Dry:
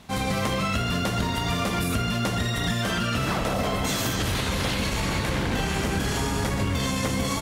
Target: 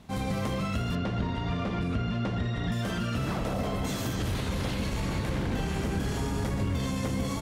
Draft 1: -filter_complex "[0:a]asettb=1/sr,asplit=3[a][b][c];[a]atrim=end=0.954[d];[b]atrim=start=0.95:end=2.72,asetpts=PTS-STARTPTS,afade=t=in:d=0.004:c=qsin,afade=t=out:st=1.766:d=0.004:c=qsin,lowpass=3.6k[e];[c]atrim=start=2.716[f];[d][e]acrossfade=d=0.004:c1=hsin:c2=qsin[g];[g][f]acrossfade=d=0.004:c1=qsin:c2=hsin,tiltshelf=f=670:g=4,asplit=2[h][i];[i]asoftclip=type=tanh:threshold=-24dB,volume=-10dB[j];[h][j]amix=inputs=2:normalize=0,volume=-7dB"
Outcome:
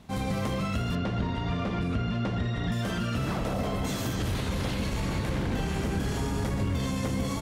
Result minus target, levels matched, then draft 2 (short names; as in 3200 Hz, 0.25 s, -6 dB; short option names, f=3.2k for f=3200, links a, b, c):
soft clip: distortion -5 dB
-filter_complex "[0:a]asettb=1/sr,asplit=3[a][b][c];[a]atrim=end=0.954[d];[b]atrim=start=0.95:end=2.72,asetpts=PTS-STARTPTS,afade=t=in:d=0.004:c=qsin,afade=t=out:st=1.766:d=0.004:c=qsin,lowpass=3.6k[e];[c]atrim=start=2.716[f];[d][e]acrossfade=d=0.004:c1=hsin:c2=qsin[g];[g][f]acrossfade=d=0.004:c1=qsin:c2=hsin,tiltshelf=f=670:g=4,asplit=2[h][i];[i]asoftclip=type=tanh:threshold=-31.5dB,volume=-10dB[j];[h][j]amix=inputs=2:normalize=0,volume=-7dB"